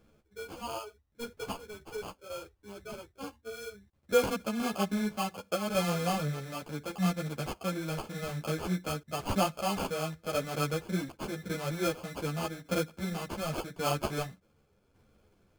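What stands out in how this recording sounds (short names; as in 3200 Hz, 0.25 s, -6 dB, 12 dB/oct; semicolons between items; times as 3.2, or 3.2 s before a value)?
tremolo saw down 0.87 Hz, depth 50%; aliases and images of a low sample rate 1900 Hz, jitter 0%; a shimmering, thickened sound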